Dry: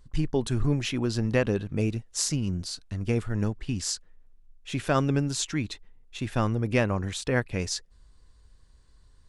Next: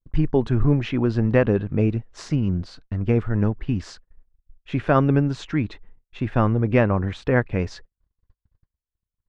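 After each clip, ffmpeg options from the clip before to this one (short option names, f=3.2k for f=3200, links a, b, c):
-af "lowpass=1.9k,agate=range=-42dB:threshold=-49dB:ratio=16:detection=peak,volume=6.5dB"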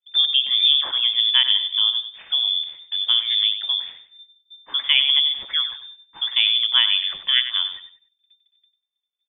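-af "afreqshift=410,aecho=1:1:96|192|288:0.282|0.0789|0.0221,lowpass=f=3.4k:t=q:w=0.5098,lowpass=f=3.4k:t=q:w=0.6013,lowpass=f=3.4k:t=q:w=0.9,lowpass=f=3.4k:t=q:w=2.563,afreqshift=-4000"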